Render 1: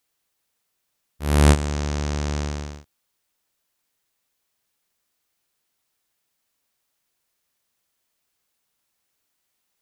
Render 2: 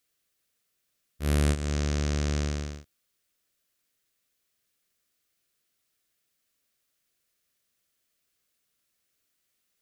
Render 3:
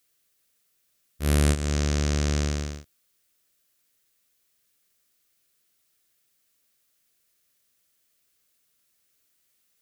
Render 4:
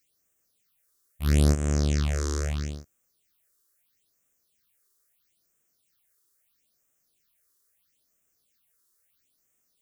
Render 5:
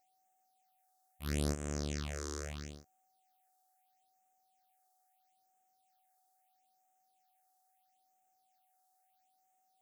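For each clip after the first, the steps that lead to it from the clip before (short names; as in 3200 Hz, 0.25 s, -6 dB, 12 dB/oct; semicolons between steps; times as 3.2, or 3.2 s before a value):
bell 890 Hz -13 dB 0.41 oct; compressor 6:1, threshold -20 dBFS, peak gain reduction 9.5 dB; gain -1.5 dB
high shelf 6300 Hz +5 dB; gain +3 dB
phaser stages 6, 0.76 Hz, lowest notch 170–4300 Hz
low shelf 150 Hz -10 dB; whine 750 Hz -66 dBFS; gain -8.5 dB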